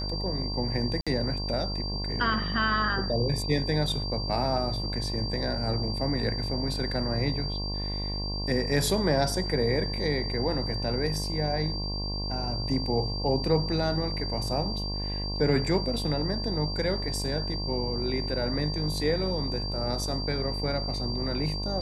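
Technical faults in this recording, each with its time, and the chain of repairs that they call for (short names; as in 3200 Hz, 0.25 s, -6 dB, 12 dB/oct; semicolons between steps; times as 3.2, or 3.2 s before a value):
buzz 50 Hz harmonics 22 -33 dBFS
tone 4700 Hz -34 dBFS
1.01–1.07 gap 56 ms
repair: notch 4700 Hz, Q 30; de-hum 50 Hz, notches 22; interpolate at 1.01, 56 ms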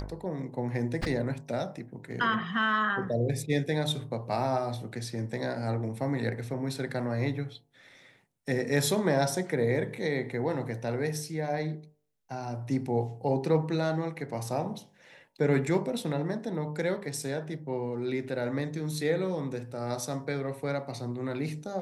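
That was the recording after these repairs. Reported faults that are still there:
none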